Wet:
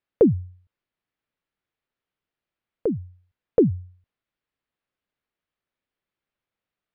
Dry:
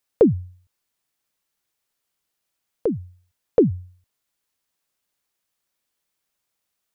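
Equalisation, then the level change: air absorption 370 m; bell 880 Hz -3.5 dB 1 oct; 0.0 dB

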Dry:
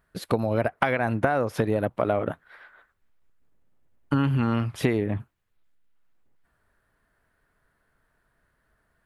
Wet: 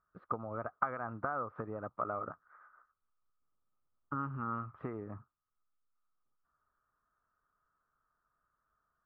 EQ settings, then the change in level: ladder low-pass 1300 Hz, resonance 85%; -5.5 dB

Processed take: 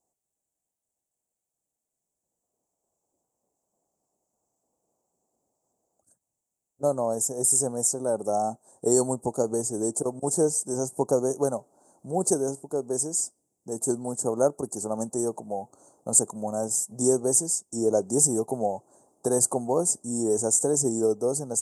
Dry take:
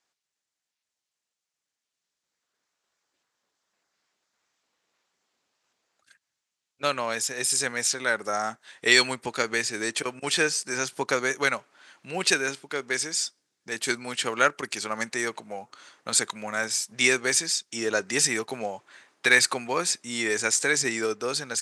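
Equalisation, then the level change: Chebyshev band-stop 770–7700 Hz, order 3; low shelf 100 Hz +5.5 dB; +5.5 dB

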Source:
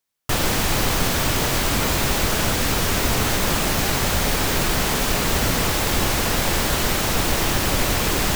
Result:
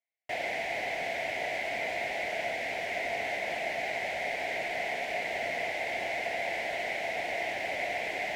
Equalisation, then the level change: double band-pass 1200 Hz, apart 1.6 oct; 0.0 dB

